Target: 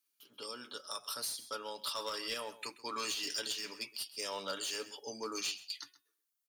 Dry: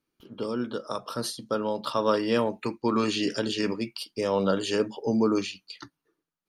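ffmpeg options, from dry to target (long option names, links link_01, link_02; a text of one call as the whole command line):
ffmpeg -i in.wav -filter_complex "[0:a]aderivative,aecho=1:1:7:0.36,asplit=2[link_01][link_02];[link_02]aeval=exprs='0.0133*(abs(mod(val(0)/0.0133+3,4)-2)-1)':channel_layout=same,volume=-3dB[link_03];[link_01][link_03]amix=inputs=2:normalize=0,bandreject=frequency=367.1:width_type=h:width=4,bandreject=frequency=734.2:width_type=h:width=4,bandreject=frequency=1101.3:width_type=h:width=4,bandreject=frequency=1468.4:width_type=h:width=4,bandreject=frequency=1835.5:width_type=h:width=4,bandreject=frequency=2202.6:width_type=h:width=4,bandreject=frequency=2569.7:width_type=h:width=4,bandreject=frequency=2936.8:width_type=h:width=4,bandreject=frequency=3303.9:width_type=h:width=4,bandreject=frequency=3671:width_type=h:width=4,asplit=2[link_04][link_05];[link_05]aecho=0:1:131:0.126[link_06];[link_04][link_06]amix=inputs=2:normalize=0,alimiter=level_in=4.5dB:limit=-24dB:level=0:latency=1:release=182,volume=-4.5dB,volume=1dB" out.wav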